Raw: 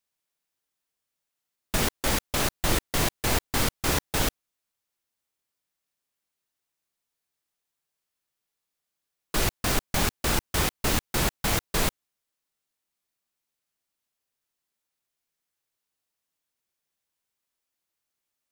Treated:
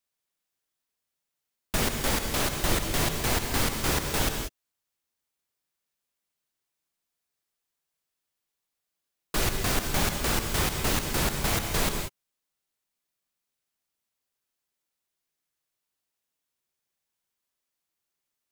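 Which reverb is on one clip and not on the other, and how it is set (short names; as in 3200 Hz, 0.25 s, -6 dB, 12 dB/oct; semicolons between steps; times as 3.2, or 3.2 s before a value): non-linear reverb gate 0.21 s rising, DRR 6 dB; gain -1.5 dB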